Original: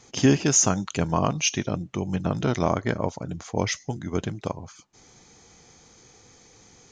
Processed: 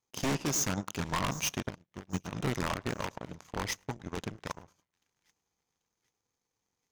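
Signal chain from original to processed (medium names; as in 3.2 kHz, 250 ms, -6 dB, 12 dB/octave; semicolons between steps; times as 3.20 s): peaking EQ 1 kHz +8 dB 0.42 oct; in parallel at 0 dB: peak limiter -14.5 dBFS, peak gain reduction 9 dB; on the sum: wavefolder -13 dBFS; on a send: two-band feedback delay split 1.7 kHz, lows 106 ms, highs 786 ms, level -14 dB; on the sum: power-law waveshaper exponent 2; 1.70–2.33 s: upward expansion 2.5:1, over -37 dBFS; trim -7.5 dB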